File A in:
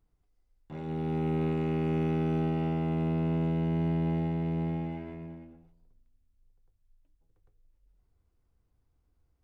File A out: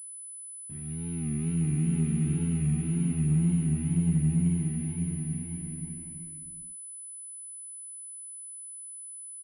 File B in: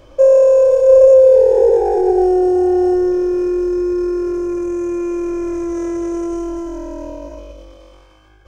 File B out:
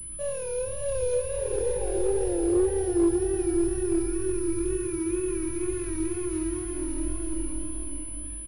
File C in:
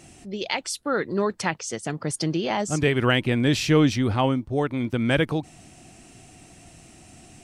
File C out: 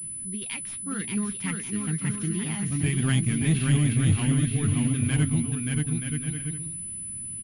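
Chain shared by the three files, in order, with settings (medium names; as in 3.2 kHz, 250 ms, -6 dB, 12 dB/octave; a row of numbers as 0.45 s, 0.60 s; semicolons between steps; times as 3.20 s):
median filter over 9 samples; flange 0.58 Hz, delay 5.8 ms, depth 5.3 ms, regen +45%; peaking EQ 670 Hz -3 dB 1 oct; hum notches 60/120 Hz; wow and flutter 120 cents; FFT filter 200 Hz 0 dB, 570 Hz -25 dB, 2.4 kHz -6 dB; bouncing-ball echo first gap 580 ms, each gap 0.6×, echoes 5; gate with hold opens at -55 dBFS; in parallel at -3 dB: overload inside the chain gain 25.5 dB; on the sum: class-D stage that switches slowly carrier 10 kHz; trim +1.5 dB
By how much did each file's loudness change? -0.5 LU, -14.5 LU, -2.5 LU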